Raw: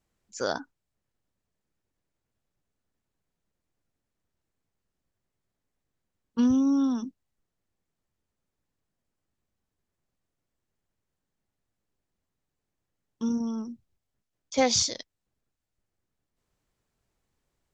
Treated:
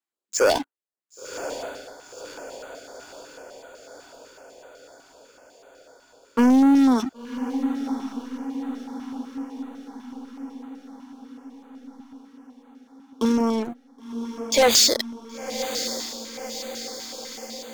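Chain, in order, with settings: HPF 310 Hz 24 dB/oct; notch 5800 Hz, Q 6.8; sample leveller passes 5; diffused feedback echo 1.046 s, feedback 62%, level -10 dB; stepped notch 8 Hz 510–5300 Hz

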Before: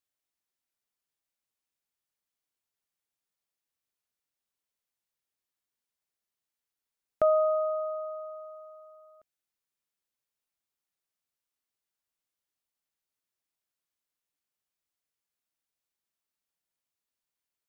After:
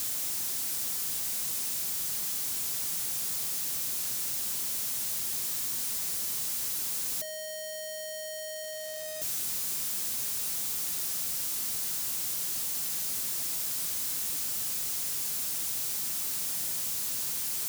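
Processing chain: infinite clipping; HPF 100 Hz 12 dB/oct; tone controls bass +9 dB, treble +11 dB; gain -1 dB

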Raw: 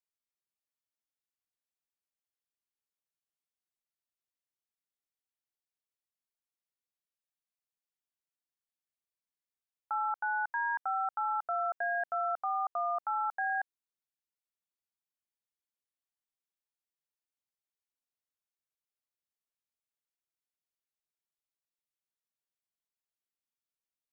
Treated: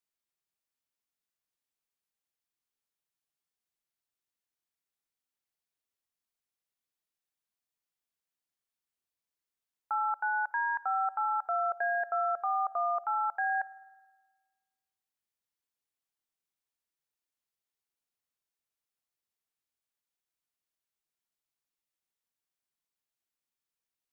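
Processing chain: notch 580 Hz, Q 18; spring tank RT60 1.4 s, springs 53 ms, chirp 45 ms, DRR 20 dB; gain +2 dB

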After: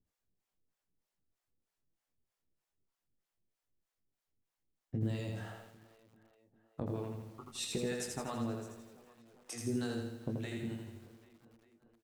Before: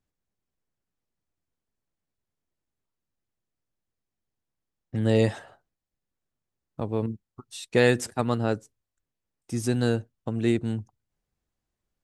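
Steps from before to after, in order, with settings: notches 50/100/150/200/250 Hz; limiter -15.5 dBFS, peak gain reduction 8 dB; compressor 8:1, threshold -33 dBFS, peak gain reduction 12 dB; harmonic tremolo 3.2 Hz, depth 100%, crossover 500 Hz; doubler 21 ms -6 dB; on a send: tape echo 0.397 s, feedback 72%, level -18.5 dB, low-pass 3900 Hz; on the sum: lo-fi delay 82 ms, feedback 55%, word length 11-bit, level -3 dB; gain +2 dB

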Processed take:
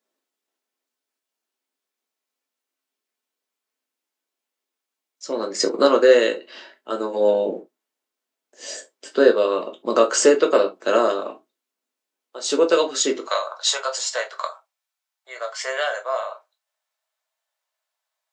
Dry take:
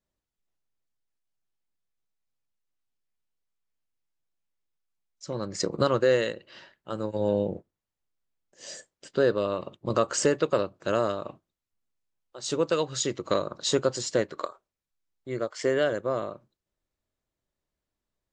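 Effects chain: steep high-pass 250 Hz 36 dB/oct, from 13.19 s 650 Hz; reverb, pre-delay 5 ms, DRR 3 dB; gain +6.5 dB

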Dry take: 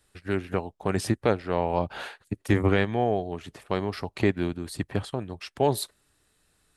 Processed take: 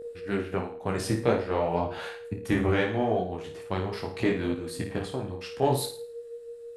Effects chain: in parallel at -12 dB: one-sided clip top -29.5 dBFS, bottom -12 dBFS; on the sum: whine 470 Hz -31 dBFS; flutter echo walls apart 9.3 m, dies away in 0.44 s; detuned doubles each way 23 cents

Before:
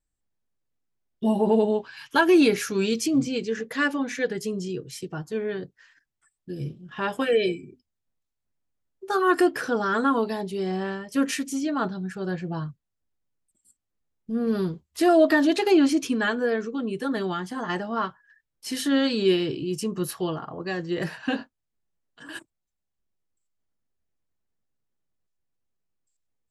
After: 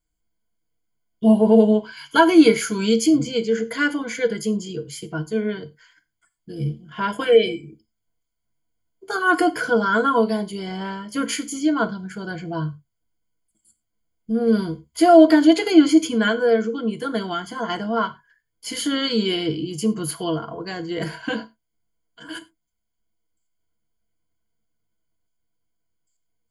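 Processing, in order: ripple EQ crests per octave 1.8, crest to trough 15 dB; non-linear reverb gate 0.13 s falling, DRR 11 dB; gain +1.5 dB

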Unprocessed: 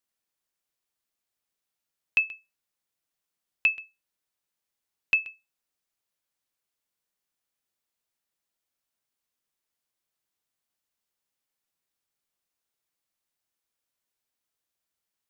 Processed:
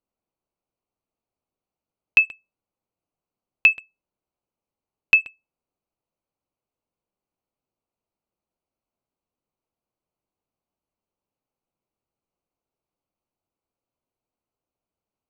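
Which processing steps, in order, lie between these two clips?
Wiener smoothing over 25 samples; gain +8 dB

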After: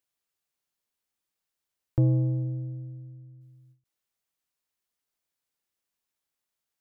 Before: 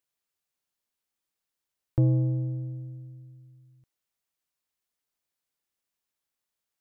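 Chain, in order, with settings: 2.43–3.4 LPF 1000 Hz -> 1000 Hz; ending taper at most 210 dB/s

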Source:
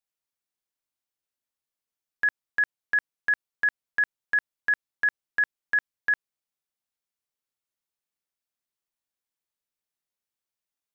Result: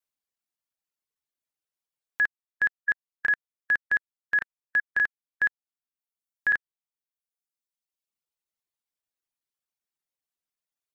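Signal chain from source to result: slices in reverse order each 0.192 s, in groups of 5; reverb removal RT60 1.5 s

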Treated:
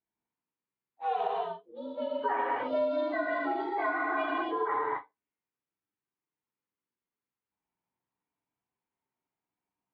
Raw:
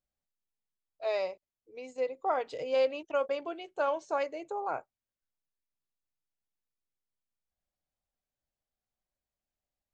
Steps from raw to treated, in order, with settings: inharmonic rescaling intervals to 119%; speaker cabinet 130–2700 Hz, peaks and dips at 140 Hz -3 dB, 290 Hz +5 dB, 410 Hz +3 dB, 590 Hz -7 dB, 950 Hz +3 dB; non-linear reverb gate 0.3 s flat, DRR -4.5 dB; compressor 4:1, threshold -31 dBFS, peak gain reduction 8 dB; ending taper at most 310 dB/s; gain +4 dB

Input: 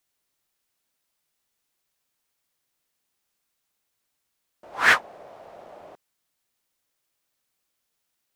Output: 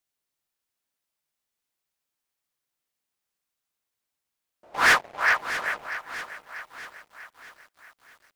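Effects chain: band-limited delay 0.398 s, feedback 33%, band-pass 1300 Hz, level -6 dB; 4.74–5.88 sample leveller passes 3; lo-fi delay 0.641 s, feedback 55%, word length 7-bit, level -12 dB; gain -7 dB

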